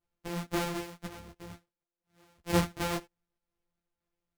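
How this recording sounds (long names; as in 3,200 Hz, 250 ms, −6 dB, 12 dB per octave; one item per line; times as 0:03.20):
a buzz of ramps at a fixed pitch in blocks of 256 samples
tremolo saw down 2 Hz, depth 40%
a shimmering, thickened sound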